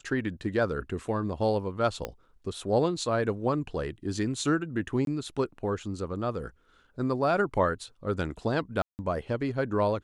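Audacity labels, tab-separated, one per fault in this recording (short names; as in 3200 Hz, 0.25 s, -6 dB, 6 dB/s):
2.050000	2.050000	pop -17 dBFS
5.050000	5.070000	gap 22 ms
8.820000	8.990000	gap 0.169 s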